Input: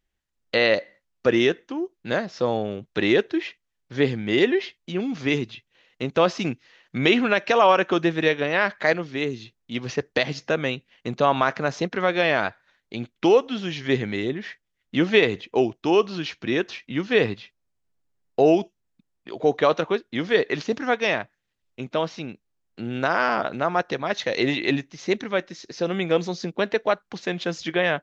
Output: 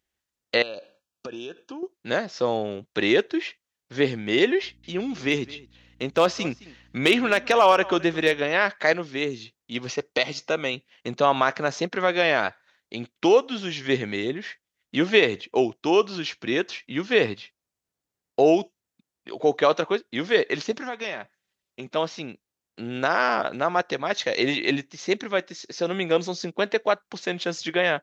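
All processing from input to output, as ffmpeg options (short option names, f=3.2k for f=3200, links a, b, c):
-filter_complex "[0:a]asettb=1/sr,asplit=3[a][b][c];[a]atrim=end=0.624[d];[b]atrim=start=0.62:end=1.83,asetpts=PTS-STARTPTS,afade=t=in:d=0.004:c=qsin,afade=t=out:st=1.206:d=0.004:c=qsin,asuperstop=centerf=2000:order=20:qfactor=3.6,acompressor=threshold=-31dB:ratio=10:attack=3.2:release=140:knee=1:detection=peak[e];[c]atrim=start=1.826[f];[d][e]acrossfade=d=0.004:c1=hsin:c2=qsin[g];[g][f]acrossfade=d=0.004:c1=qsin:c2=hsin,asettb=1/sr,asplit=3[h][i][j];[h]atrim=end=4.624[k];[i]atrim=start=4.62:end=8.39,asetpts=PTS-STARTPTS,afade=t=in:d=0.004:c=qsin,afade=t=out:st=3.766:d=0.004:c=qsin,aecho=1:1:214:0.0944,atrim=end_sample=166257,aeval=exprs='val(0)+0.00282*(sin(2*PI*60*n/s)+sin(2*PI*2*60*n/s)/2+sin(2*PI*3*60*n/s)/3+sin(2*PI*4*60*n/s)/4+sin(2*PI*5*60*n/s)/5)':c=same,asoftclip=type=hard:threshold=-8.5dB[l];[j]atrim=start=8.386[m];[k][l]acrossfade=d=0.004:c1=hsin:c2=qsin[n];[n][m]acrossfade=d=0.004:c1=qsin:c2=hsin,asettb=1/sr,asplit=3[o][p][q];[o]atrim=end=9.894[r];[p]atrim=start=9.89:end=10.74,asetpts=PTS-STARTPTS,afade=t=in:d=0.004:c=qsin,afade=t=out:st=0.846:d=0.004:c=qsin,asuperstop=centerf=1700:order=4:qfactor=6.1,equalizer=f=89:w=0.32:g=-5[s];[q]atrim=start=10.736[t];[r][s]acrossfade=d=0.004:c1=hsin:c2=qsin[u];[u][t]acrossfade=d=0.004:c1=qsin:c2=hsin,asettb=1/sr,asplit=3[v][w][x];[v]atrim=end=20.714[y];[w]atrim=start=20.71:end=21.96,asetpts=PTS-STARTPTS,afade=t=in:d=0.004:c=qsin,afade=t=out:st=1.246:d=0.004:c=qsin,aecho=1:1:5.2:0.33,atrim=end_sample=55125,acompressor=threshold=-29dB:ratio=3:attack=3.2:release=140:knee=1:detection=peak[z];[x]atrim=start=21.956[aa];[y][z]acrossfade=d=0.004:c1=hsin:c2=qsin[ab];[ab][aa]acrossfade=d=0.004:c1=qsin:c2=hsin,highpass=50,bass=f=250:g=-5,treble=f=4k:g=4"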